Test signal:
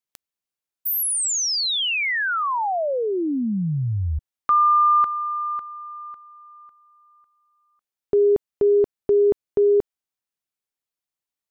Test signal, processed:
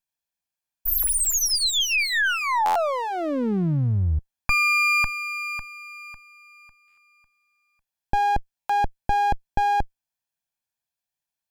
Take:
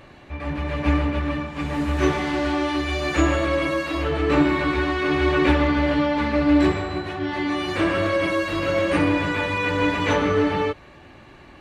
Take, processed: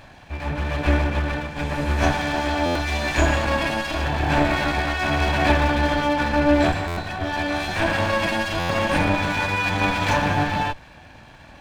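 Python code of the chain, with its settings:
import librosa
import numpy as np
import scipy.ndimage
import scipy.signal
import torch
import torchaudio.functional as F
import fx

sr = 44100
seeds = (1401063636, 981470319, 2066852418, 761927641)

y = fx.lower_of_two(x, sr, delay_ms=1.2)
y = fx.buffer_glitch(y, sr, at_s=(2.65, 6.87, 8.59), block=512, repeats=8)
y = y * 10.0 ** (2.5 / 20.0)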